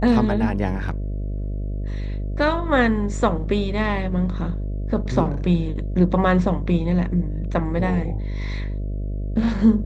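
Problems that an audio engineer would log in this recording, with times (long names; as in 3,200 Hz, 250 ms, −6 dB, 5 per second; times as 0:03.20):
mains buzz 50 Hz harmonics 13 −26 dBFS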